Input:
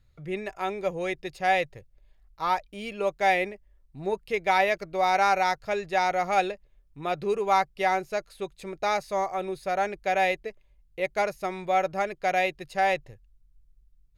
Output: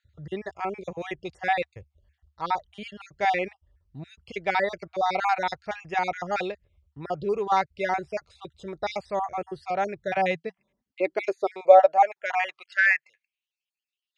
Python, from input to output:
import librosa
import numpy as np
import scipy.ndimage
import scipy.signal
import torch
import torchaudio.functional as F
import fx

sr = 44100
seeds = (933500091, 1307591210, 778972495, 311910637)

y = fx.spec_dropout(x, sr, seeds[0], share_pct=37)
y = fx.filter_sweep_highpass(y, sr, from_hz=73.0, to_hz=2800.0, start_s=9.53, end_s=13.46, q=6.4)
y = scipy.signal.sosfilt(scipy.signal.bessel(8, 5600.0, 'lowpass', norm='mag', fs=sr, output='sos'), y)